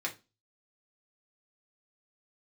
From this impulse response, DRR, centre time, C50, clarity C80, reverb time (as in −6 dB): −1.5 dB, 11 ms, 15.0 dB, 23.5 dB, 0.25 s